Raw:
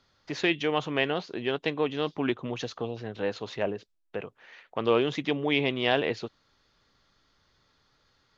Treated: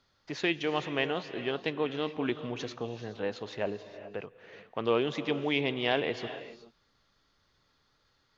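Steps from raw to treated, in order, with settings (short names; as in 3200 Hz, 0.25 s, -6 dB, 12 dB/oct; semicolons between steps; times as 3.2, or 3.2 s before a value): non-linear reverb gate 0.45 s rising, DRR 11 dB; gain -3.5 dB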